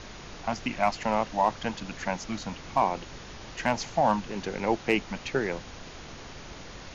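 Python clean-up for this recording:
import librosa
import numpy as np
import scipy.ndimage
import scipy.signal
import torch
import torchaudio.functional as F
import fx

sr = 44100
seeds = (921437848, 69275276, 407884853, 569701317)

y = fx.fix_declip(x, sr, threshold_db=-12.5)
y = fx.noise_reduce(y, sr, print_start_s=5.61, print_end_s=6.11, reduce_db=28.0)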